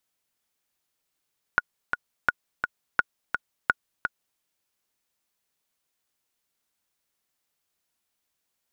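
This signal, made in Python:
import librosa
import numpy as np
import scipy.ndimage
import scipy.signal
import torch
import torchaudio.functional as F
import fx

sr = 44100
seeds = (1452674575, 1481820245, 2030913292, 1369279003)

y = fx.click_track(sr, bpm=170, beats=2, bars=4, hz=1450.0, accent_db=6.0, level_db=-6.0)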